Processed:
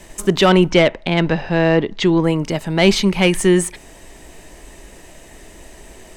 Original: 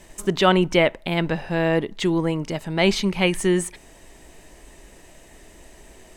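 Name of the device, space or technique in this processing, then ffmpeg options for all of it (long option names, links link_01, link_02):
one-band saturation: -filter_complex "[0:a]asettb=1/sr,asplit=3[link_01][link_02][link_03];[link_01]atrim=end=0.704[link_04];[link_02]atrim=start=0.7:end=2.24,asetpts=PTS-STARTPTS,afade=type=in:duration=0.004:curve=qsin,afade=type=out:start_time=1.536:duration=0.004:curve=qsin,lowpass=frequency=6300:width=0.5412,lowpass=frequency=6300:width=1.3066[link_05];[link_03]atrim=start=2.236[link_06];[link_04][link_05]acrossfade=duration=0.004:curve1=hsin:curve2=qsin[link_07];[link_07][link_06]acrossfade=duration=0.004:curve1=qsin:curve2=hsin,acrossover=split=390|4100[link_08][link_09][link_10];[link_09]asoftclip=type=tanh:threshold=-15dB[link_11];[link_08][link_11][link_10]amix=inputs=3:normalize=0,volume=6.5dB"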